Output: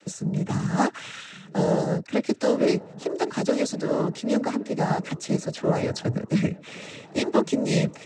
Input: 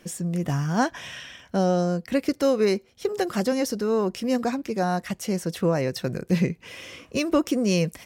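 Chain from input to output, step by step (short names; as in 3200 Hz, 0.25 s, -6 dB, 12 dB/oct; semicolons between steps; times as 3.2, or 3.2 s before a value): dark delay 1.11 s, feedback 60%, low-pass 2000 Hz, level -21 dB; noise vocoder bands 12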